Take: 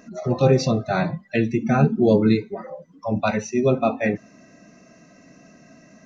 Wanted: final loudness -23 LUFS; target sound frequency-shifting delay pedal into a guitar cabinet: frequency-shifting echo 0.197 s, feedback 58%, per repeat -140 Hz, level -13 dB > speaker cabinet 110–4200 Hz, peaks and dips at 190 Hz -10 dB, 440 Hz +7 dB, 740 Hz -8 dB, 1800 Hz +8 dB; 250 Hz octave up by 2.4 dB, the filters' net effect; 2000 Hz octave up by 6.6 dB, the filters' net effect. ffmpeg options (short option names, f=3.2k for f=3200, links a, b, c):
-filter_complex "[0:a]equalizer=f=250:t=o:g=6,equalizer=f=2k:t=o:g=3,asplit=7[a][b][c][d][e][f][g];[b]adelay=197,afreqshift=-140,volume=-13dB[h];[c]adelay=394,afreqshift=-280,volume=-17.7dB[i];[d]adelay=591,afreqshift=-420,volume=-22.5dB[j];[e]adelay=788,afreqshift=-560,volume=-27.2dB[k];[f]adelay=985,afreqshift=-700,volume=-31.9dB[l];[g]adelay=1182,afreqshift=-840,volume=-36.7dB[m];[a][h][i][j][k][l][m]amix=inputs=7:normalize=0,highpass=110,equalizer=f=190:t=q:w=4:g=-10,equalizer=f=440:t=q:w=4:g=7,equalizer=f=740:t=q:w=4:g=-8,equalizer=f=1.8k:t=q:w=4:g=8,lowpass=f=4.2k:w=0.5412,lowpass=f=4.2k:w=1.3066,volume=-5dB"